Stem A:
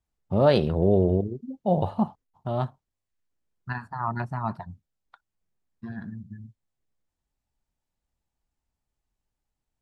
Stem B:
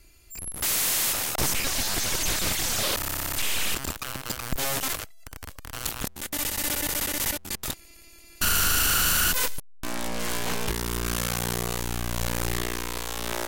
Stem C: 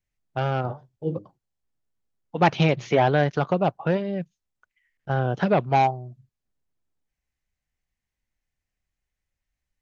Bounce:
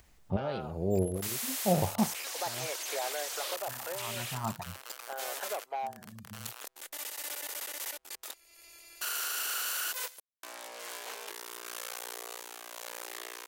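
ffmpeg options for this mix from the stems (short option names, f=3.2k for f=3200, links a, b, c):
-filter_complex "[0:a]volume=-4dB[a];[1:a]highpass=f=430:w=0.5412,highpass=f=430:w=1.3066,adelay=600,volume=-11dB[b];[2:a]deesser=0.95,highpass=f=490:w=0.5412,highpass=f=490:w=1.3066,acompressor=threshold=-44dB:ratio=1.5,volume=-5.5dB,asplit=2[c][d];[d]apad=whole_len=432905[e];[a][e]sidechaincompress=threshold=-47dB:ratio=12:attack=6.4:release=587[f];[f][b][c]amix=inputs=3:normalize=0,acompressor=mode=upward:threshold=-42dB:ratio=2.5"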